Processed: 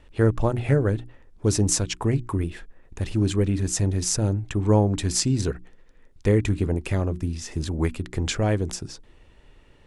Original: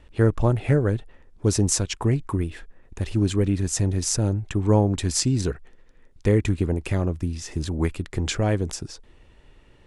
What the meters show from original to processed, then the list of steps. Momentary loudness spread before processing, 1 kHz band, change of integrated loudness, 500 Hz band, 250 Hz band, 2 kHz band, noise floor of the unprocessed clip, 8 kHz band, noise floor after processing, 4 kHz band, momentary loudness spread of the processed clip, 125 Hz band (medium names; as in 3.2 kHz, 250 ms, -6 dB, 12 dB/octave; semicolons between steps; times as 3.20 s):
9 LU, 0.0 dB, -0.5 dB, 0.0 dB, -0.5 dB, 0.0 dB, -53 dBFS, 0.0 dB, -54 dBFS, 0.0 dB, 9 LU, -0.5 dB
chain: hum notches 60/120/180/240/300/360 Hz